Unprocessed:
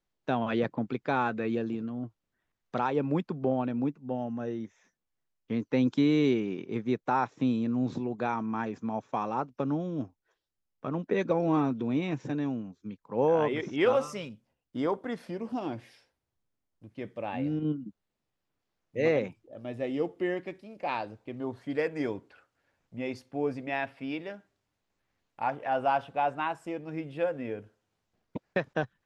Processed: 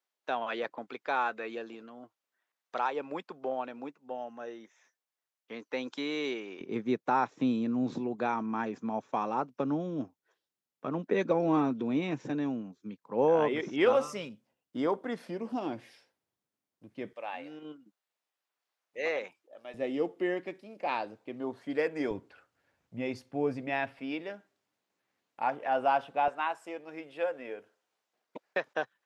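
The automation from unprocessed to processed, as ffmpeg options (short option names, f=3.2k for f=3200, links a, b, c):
-af "asetnsamples=n=441:p=0,asendcmd='6.61 highpass f 180;17.13 highpass f 720;19.74 highpass f 220;22.11 highpass f 58;23.99 highpass f 220;26.28 highpass f 490',highpass=590"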